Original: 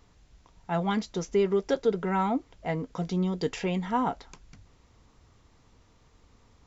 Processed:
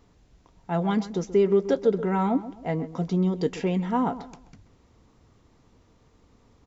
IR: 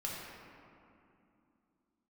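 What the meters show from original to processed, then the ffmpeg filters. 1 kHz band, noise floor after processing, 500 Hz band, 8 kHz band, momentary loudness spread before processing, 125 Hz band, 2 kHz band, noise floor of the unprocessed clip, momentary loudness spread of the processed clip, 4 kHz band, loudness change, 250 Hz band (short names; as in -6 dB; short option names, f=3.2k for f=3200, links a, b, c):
+0.5 dB, -61 dBFS, +4.0 dB, n/a, 7 LU, +4.0 dB, -1.5 dB, -62 dBFS, 8 LU, -2.0 dB, +3.5 dB, +4.5 dB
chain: -filter_complex "[0:a]equalizer=f=280:t=o:w=2.9:g=7,asplit=2[a][b];[b]adelay=131,lowpass=f=2.3k:p=1,volume=-14dB,asplit=2[c][d];[d]adelay=131,lowpass=f=2.3k:p=1,volume=0.34,asplit=2[e][f];[f]adelay=131,lowpass=f=2.3k:p=1,volume=0.34[g];[a][c][e][g]amix=inputs=4:normalize=0,volume=-2.5dB"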